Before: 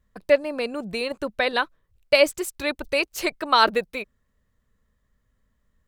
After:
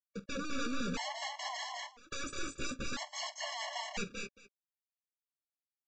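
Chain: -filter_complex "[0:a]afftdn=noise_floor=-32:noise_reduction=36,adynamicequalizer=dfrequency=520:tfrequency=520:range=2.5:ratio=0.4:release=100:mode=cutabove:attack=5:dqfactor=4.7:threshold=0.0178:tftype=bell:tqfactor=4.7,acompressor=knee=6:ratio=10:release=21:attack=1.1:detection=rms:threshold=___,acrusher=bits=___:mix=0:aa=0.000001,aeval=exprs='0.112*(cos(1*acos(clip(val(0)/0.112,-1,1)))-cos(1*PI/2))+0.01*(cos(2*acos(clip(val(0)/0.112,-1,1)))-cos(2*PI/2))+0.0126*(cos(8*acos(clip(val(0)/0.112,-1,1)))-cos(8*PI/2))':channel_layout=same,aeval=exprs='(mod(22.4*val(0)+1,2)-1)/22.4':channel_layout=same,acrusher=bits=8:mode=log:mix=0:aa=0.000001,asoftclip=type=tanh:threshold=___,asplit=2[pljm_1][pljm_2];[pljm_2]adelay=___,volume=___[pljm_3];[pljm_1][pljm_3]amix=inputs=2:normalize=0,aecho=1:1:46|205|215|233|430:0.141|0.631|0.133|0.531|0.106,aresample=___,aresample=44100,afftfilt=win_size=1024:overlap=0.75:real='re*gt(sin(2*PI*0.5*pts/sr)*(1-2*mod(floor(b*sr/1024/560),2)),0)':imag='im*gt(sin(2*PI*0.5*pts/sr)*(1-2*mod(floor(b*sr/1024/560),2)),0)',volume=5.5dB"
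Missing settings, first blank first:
-25dB, 7, -40dB, 15, -13.5dB, 16000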